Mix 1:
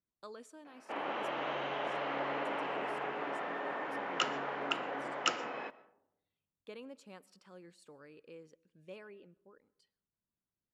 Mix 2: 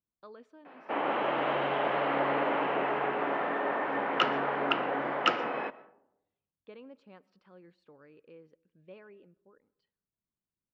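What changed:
background +9.0 dB
master: add high-frequency loss of the air 280 metres

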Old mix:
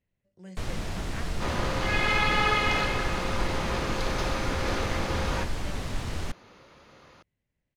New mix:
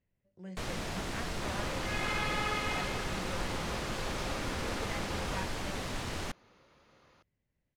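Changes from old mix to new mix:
speech: add low-pass filter 2,600 Hz 6 dB per octave
first sound: add low-shelf EQ 140 Hz −10.5 dB
second sound −10.0 dB

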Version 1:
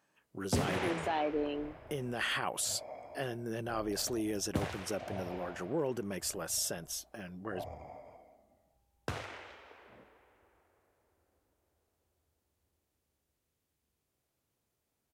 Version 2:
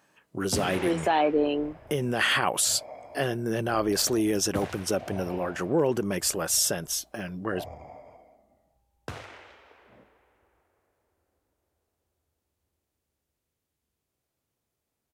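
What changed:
speech +10.0 dB
second sound +3.5 dB

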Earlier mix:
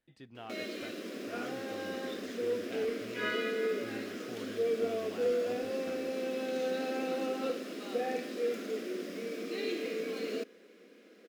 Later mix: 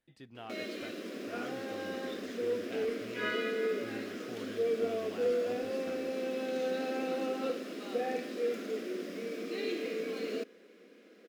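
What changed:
background: add high-shelf EQ 6,000 Hz −7 dB
master: add high-shelf EQ 7,800 Hz +4.5 dB

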